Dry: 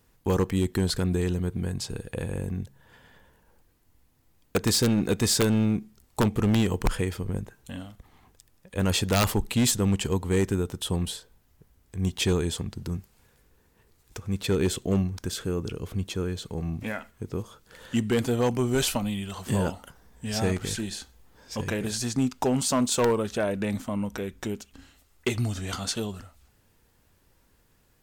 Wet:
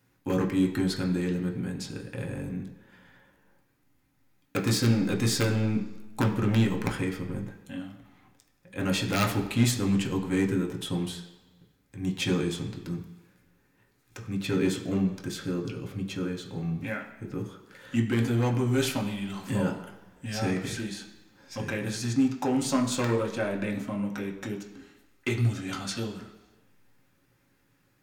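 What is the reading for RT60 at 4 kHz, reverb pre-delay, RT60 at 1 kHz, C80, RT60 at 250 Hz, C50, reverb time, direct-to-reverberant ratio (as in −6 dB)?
1.2 s, 3 ms, 1.2 s, 11.5 dB, 1.0 s, 9.0 dB, 1.2 s, 0.5 dB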